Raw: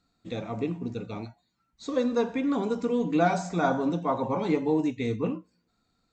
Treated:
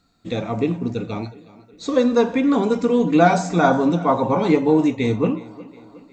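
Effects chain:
tape delay 365 ms, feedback 58%, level −19 dB, low-pass 5,900 Hz
level +9 dB

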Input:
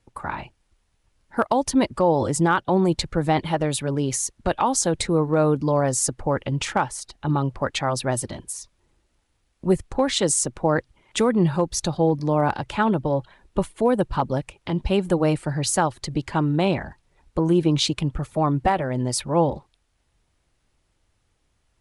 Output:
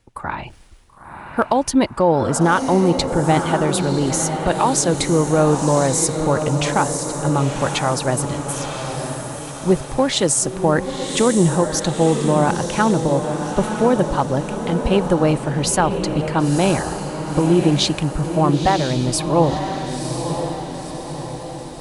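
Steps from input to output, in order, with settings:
reversed playback
upward compression, threshold −33 dBFS
reversed playback
feedback delay with all-pass diffusion 990 ms, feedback 53%, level −6.5 dB
level +3.5 dB

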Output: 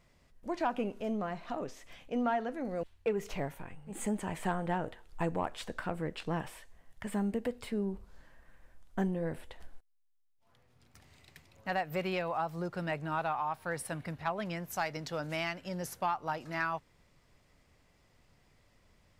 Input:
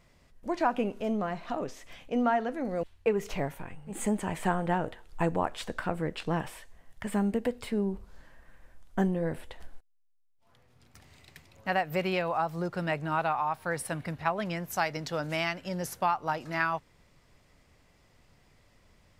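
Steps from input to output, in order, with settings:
soft clipping −16 dBFS, distortion −23 dB
level −4 dB

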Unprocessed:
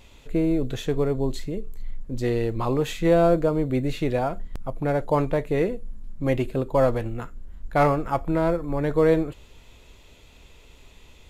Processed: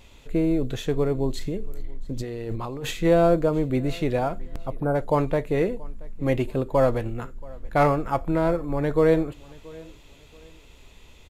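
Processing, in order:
0:01.36–0:02.91: compressor whose output falls as the input rises −29 dBFS, ratio −1
0:04.74–0:04.95: gain on a spectral selection 1,600–8,200 Hz −23 dB
repeating echo 679 ms, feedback 34%, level −23.5 dB

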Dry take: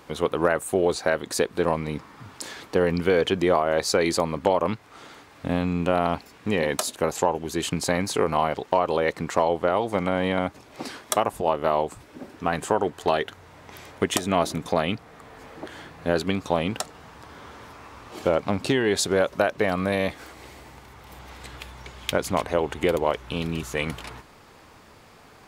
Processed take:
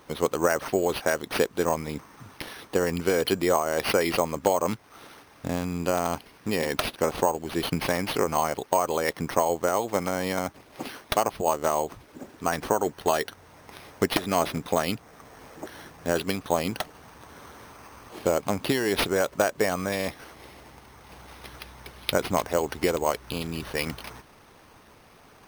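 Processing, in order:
harmonic and percussive parts rebalanced percussive +6 dB
bad sample-rate conversion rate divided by 6×, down none, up hold
level −6 dB

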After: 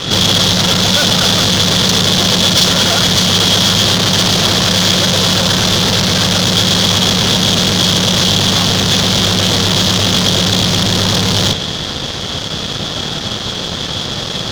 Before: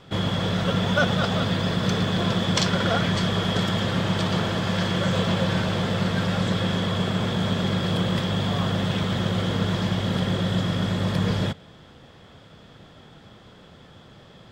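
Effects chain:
fuzz pedal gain 44 dB, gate −52 dBFS
flat-topped bell 4,500 Hz +10 dB 1.3 octaves
level −1 dB

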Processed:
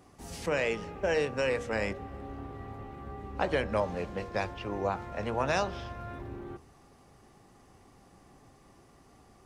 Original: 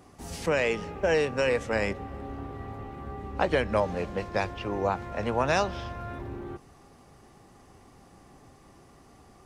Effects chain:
hum removal 80.08 Hz, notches 20
level −3.5 dB

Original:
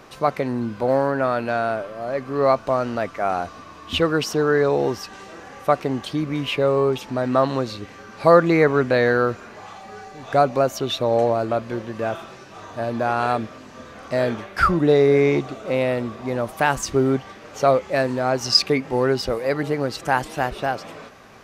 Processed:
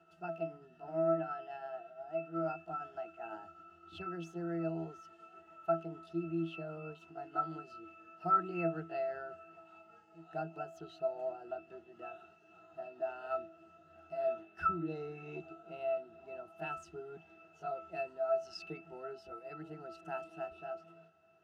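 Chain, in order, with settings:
pitch glide at a constant tempo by +3 semitones ending unshifted
RIAA equalisation recording
resonances in every octave E, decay 0.27 s

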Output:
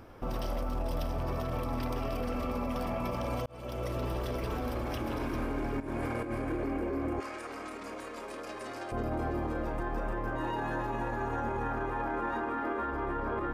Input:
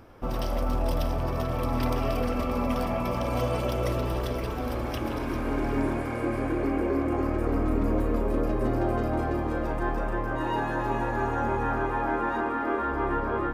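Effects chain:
0:03.46–0:04.27: fade in
0:05.80–0:06.32: compressor whose output falls as the input rises −31 dBFS, ratio −0.5
brickwall limiter −25.5 dBFS, peak gain reduction 10.5 dB
0:07.20–0:08.92: meter weighting curve ITU-R 468

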